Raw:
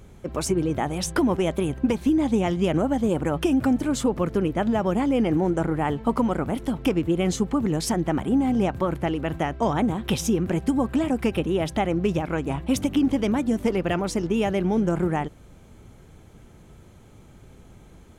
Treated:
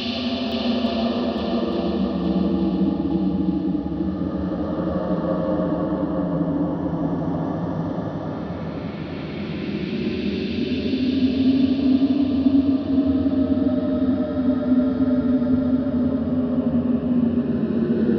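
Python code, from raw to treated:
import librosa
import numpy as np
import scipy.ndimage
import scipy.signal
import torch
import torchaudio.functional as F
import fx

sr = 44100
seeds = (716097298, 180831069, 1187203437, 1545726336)

p1 = fx.partial_stretch(x, sr, pct=77)
p2 = p1 + 10.0 ** (-10.5 / 20.0) * np.pad(p1, (int(445 * sr / 1000.0), 0))[:len(p1)]
p3 = fx.paulstretch(p2, sr, seeds[0], factor=25.0, window_s=0.1, from_s=7.89)
y = p3 + fx.echo_swing(p3, sr, ms=863, ratio=1.5, feedback_pct=48, wet_db=-4.5, dry=0)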